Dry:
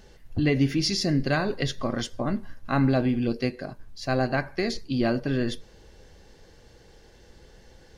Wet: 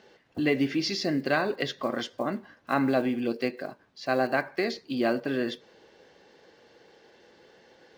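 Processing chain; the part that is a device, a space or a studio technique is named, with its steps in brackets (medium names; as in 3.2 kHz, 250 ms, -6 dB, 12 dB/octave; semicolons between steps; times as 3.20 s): early digital voice recorder (band-pass 290–4000 Hz; block-companded coder 7-bit); trim +1 dB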